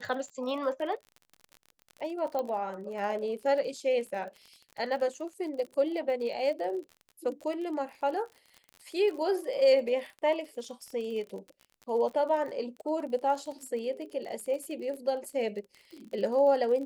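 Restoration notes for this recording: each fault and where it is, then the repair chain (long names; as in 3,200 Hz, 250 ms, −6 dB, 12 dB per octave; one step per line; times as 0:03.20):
surface crackle 38 per second −38 dBFS
0:02.39: click −21 dBFS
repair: click removal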